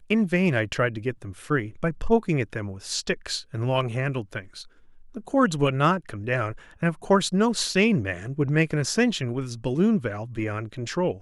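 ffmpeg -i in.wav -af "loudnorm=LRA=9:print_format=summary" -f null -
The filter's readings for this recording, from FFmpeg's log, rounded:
Input Integrated:    -25.2 LUFS
Input True Peak:      -7.6 dBTP
Input LRA:             3.6 LU
Input Threshold:     -35.5 LUFS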